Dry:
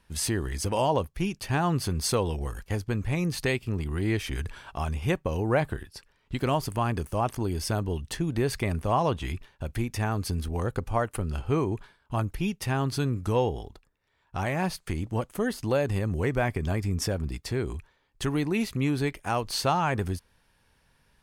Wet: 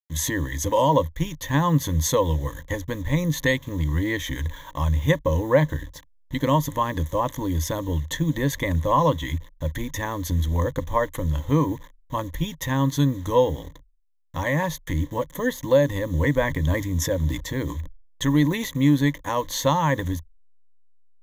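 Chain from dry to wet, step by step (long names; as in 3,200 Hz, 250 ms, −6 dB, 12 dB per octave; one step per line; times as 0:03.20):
hold until the input has moved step −47.5 dBFS
EQ curve with evenly spaced ripples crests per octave 1.1, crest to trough 17 dB
0:16.39–0:18.70: level that may fall only so fast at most 91 dB per second
level +1.5 dB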